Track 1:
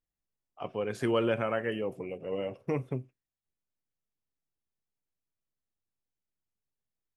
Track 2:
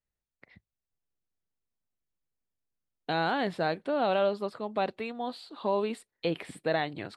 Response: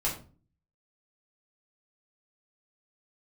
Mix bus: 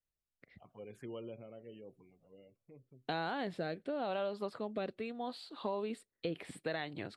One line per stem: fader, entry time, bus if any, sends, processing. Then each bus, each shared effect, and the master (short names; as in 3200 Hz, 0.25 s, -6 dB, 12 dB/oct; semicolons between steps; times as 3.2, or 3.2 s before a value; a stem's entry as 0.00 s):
-14.0 dB, 0.00 s, no send, spectral gate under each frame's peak -30 dB strong; envelope phaser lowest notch 170 Hz, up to 1700 Hz, full sweep at -27.5 dBFS; auto duck -11 dB, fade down 1.65 s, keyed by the second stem
-1.5 dB, 0.00 s, no send, dry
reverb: off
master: rotary speaker horn 0.85 Hz; compressor 4:1, threshold -34 dBFS, peak gain reduction 8 dB